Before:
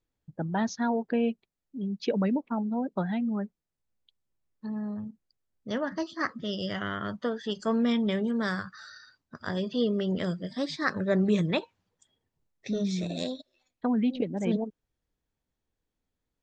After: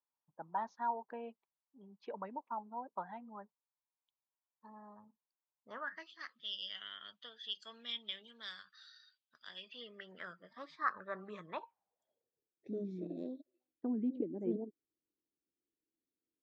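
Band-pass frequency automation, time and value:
band-pass, Q 4.5
5.68 s 970 Hz
6.23 s 3300 Hz
9.43 s 3300 Hz
10.46 s 1200 Hz
11.43 s 1200 Hz
12.68 s 330 Hz

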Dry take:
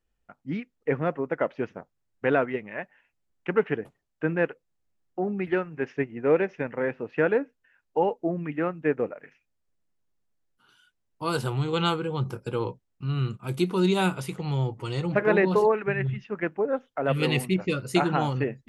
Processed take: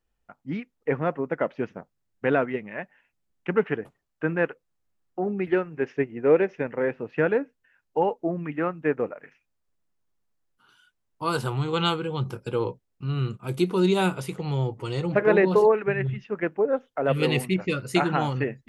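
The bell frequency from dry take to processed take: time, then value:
bell +3.5 dB 0.91 oct
930 Hz
from 1.16 s 190 Hz
from 3.65 s 1200 Hz
from 5.26 s 410 Hz
from 6.96 s 140 Hz
from 8.02 s 1100 Hz
from 11.82 s 3200 Hz
from 12.53 s 460 Hz
from 17.42 s 1900 Hz

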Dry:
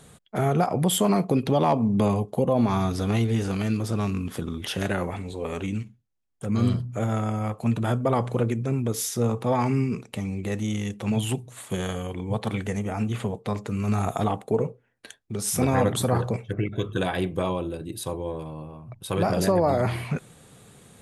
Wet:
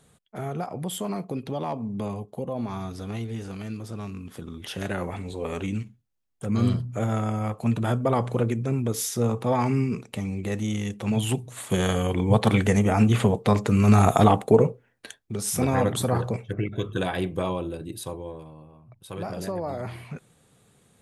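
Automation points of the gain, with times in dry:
4.24 s -9 dB
5.29 s 0 dB
11.12 s 0 dB
12.17 s +8 dB
14.42 s +8 dB
15.48 s -1 dB
17.89 s -1 dB
18.6 s -9.5 dB

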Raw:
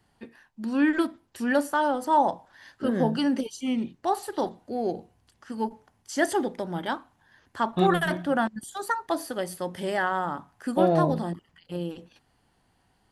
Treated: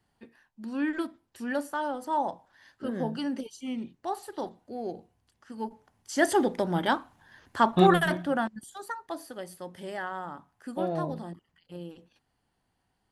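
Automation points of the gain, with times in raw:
5.53 s -7 dB
6.56 s +4 dB
7.69 s +4 dB
8.92 s -9 dB

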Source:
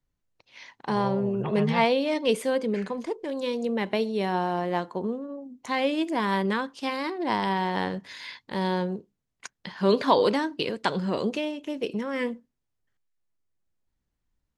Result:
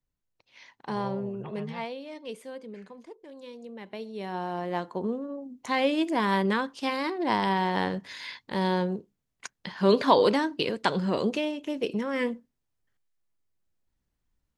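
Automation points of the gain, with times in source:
1.15 s -5.5 dB
1.97 s -15 dB
3.79 s -15 dB
4.43 s -6 dB
5.19 s +0.5 dB

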